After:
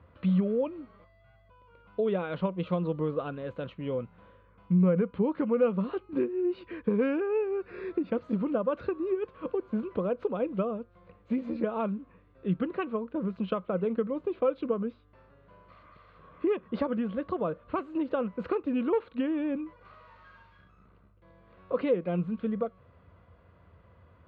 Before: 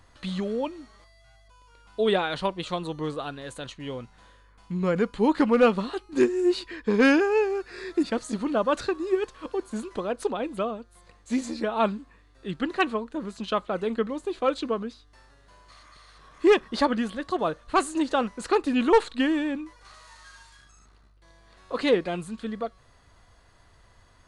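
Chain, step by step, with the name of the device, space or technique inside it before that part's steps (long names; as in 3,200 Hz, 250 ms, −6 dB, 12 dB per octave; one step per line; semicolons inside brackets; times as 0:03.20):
bass amplifier (downward compressor 4 to 1, threshold −28 dBFS, peak gain reduction 12 dB; loudspeaker in its box 60–2,400 Hz, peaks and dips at 86 Hz +7 dB, 180 Hz +9 dB, 510 Hz +7 dB, 800 Hz −7 dB, 1,800 Hz −10 dB)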